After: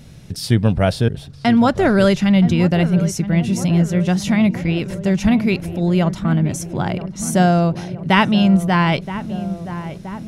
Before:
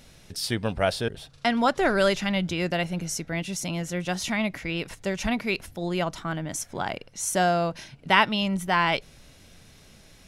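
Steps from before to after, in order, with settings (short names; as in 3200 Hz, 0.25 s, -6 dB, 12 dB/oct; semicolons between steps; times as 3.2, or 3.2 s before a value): bell 130 Hz +14.5 dB 2.5 oct; darkening echo 0.973 s, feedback 71%, low-pass 1300 Hz, level -12 dB; gain +2.5 dB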